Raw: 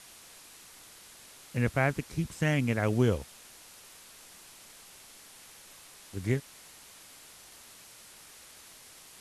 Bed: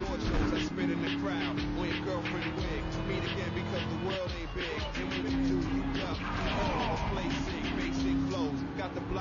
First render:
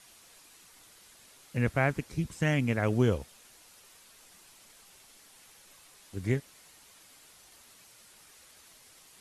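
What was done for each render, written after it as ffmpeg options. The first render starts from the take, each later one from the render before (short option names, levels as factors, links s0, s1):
-af "afftdn=nr=6:nf=-53"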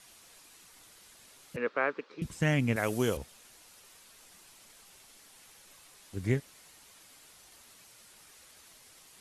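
-filter_complex "[0:a]asettb=1/sr,asplit=3[s0][s1][s2];[s0]atrim=end=1.564[s3];[s1]atrim=start=1.56:end=2.22,asetpts=PTS-STARTPTS,afade=t=in:d=0.004:c=qsin,afade=t=out:st=0.656:d=0.004:c=qsin,highpass=f=310:w=0.5412,highpass=f=310:w=1.3066,equalizer=f=320:t=q:w=4:g=-4,equalizer=f=470:t=q:w=4:g=5,equalizer=f=720:t=q:w=4:g=-8,equalizer=f=1200:t=q:w=4:g=6,equalizer=f=2100:t=q:w=4:g=-5,equalizer=f=3100:t=q:w=4:g=-4,lowpass=f=3900:w=0.5412,lowpass=f=3900:w=1.3066[s4];[s2]atrim=start=2.216[s5];[s3][s4]acrossfade=d=0.004:c1=hsin:c2=qsin[s6];[s6][s5]acrossfade=d=0.004:c1=qsin:c2=hsin,asettb=1/sr,asplit=3[s7][s8][s9];[s7]atrim=end=2.764[s10];[s8]atrim=start=2.76:end=3.17,asetpts=PTS-STARTPTS,afade=t=in:d=0.004:c=qsin,afade=t=out:st=0.406:d=0.004:c=qsin,aemphasis=mode=production:type=bsi[s11];[s9]atrim=start=3.166[s12];[s10][s11]acrossfade=d=0.004:c1=hsin:c2=qsin[s13];[s13][s12]acrossfade=d=0.004:c1=qsin:c2=hsin"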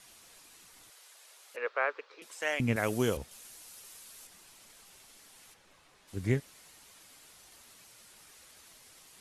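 -filter_complex "[0:a]asettb=1/sr,asplit=3[s0][s1][s2];[s0]atrim=end=0.904[s3];[s1]atrim=start=0.9:end=2.6,asetpts=PTS-STARTPTS,afade=t=in:d=0.004:c=qsin,afade=t=out:st=1.696:d=0.004:c=qsin,highpass=f=480:w=0.5412,highpass=f=480:w=1.3066[s4];[s2]atrim=start=2.596[s5];[s3][s4]acrossfade=d=0.004:c1=hsin:c2=qsin[s6];[s6][s5]acrossfade=d=0.004:c1=qsin:c2=hsin,asettb=1/sr,asplit=3[s7][s8][s9];[s7]atrim=end=3.314[s10];[s8]atrim=start=3.31:end=4.27,asetpts=PTS-STARTPTS,afade=t=in:d=0.004:c=qsin,afade=t=out:st=0.956:d=0.004:c=qsin,highshelf=f=5500:g=9[s11];[s9]atrim=start=4.266[s12];[s10][s11]acrossfade=d=0.004:c1=hsin:c2=qsin[s13];[s13][s12]acrossfade=d=0.004:c1=qsin:c2=hsin,asplit=3[s14][s15][s16];[s14]afade=t=out:st=5.53:d=0.02[s17];[s15]aemphasis=mode=reproduction:type=75kf,afade=t=in:st=5.53:d=0.02,afade=t=out:st=6.07:d=0.02[s18];[s16]afade=t=in:st=6.07:d=0.02[s19];[s17][s18][s19]amix=inputs=3:normalize=0"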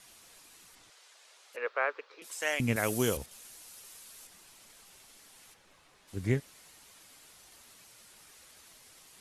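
-filter_complex "[0:a]asettb=1/sr,asplit=3[s0][s1][s2];[s0]atrim=end=0.754[s3];[s1]atrim=start=0.75:end=1.53,asetpts=PTS-STARTPTS,afade=t=in:d=0.004:c=qsin,afade=t=out:st=0.776:d=0.004:c=qsin,lowpass=7300[s4];[s2]atrim=start=1.526[s5];[s3][s4]acrossfade=d=0.004:c1=hsin:c2=qsin[s6];[s6][s5]acrossfade=d=0.004:c1=qsin:c2=hsin,asettb=1/sr,asplit=3[s7][s8][s9];[s7]atrim=end=2.244[s10];[s8]atrim=start=2.24:end=3.26,asetpts=PTS-STARTPTS,afade=t=in:d=0.004:c=qsin,afade=t=out:st=1.016:d=0.004:c=qsin,aemphasis=mode=production:type=cd[s11];[s9]atrim=start=3.256[s12];[s10][s11]acrossfade=d=0.004:c1=hsin:c2=qsin[s13];[s13][s12]acrossfade=d=0.004:c1=qsin:c2=hsin"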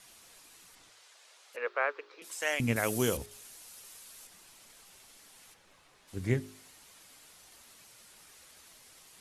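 -af "bandreject=f=51.93:t=h:w=4,bandreject=f=103.86:t=h:w=4,bandreject=f=155.79:t=h:w=4,bandreject=f=207.72:t=h:w=4,bandreject=f=259.65:t=h:w=4,bandreject=f=311.58:t=h:w=4,bandreject=f=363.51:t=h:w=4,bandreject=f=415.44:t=h:w=4"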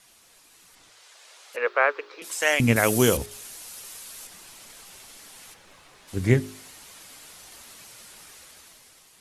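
-af "dynaudnorm=f=230:g=9:m=3.16"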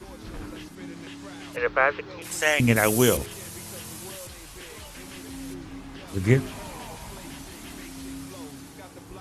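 -filter_complex "[1:a]volume=0.376[s0];[0:a][s0]amix=inputs=2:normalize=0"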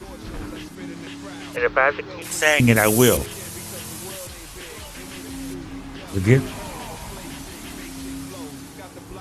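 -af "volume=1.78,alimiter=limit=0.708:level=0:latency=1"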